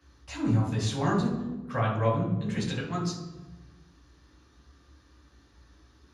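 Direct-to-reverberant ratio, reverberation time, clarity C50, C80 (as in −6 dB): −5.0 dB, 1.2 s, 4.0 dB, 8.0 dB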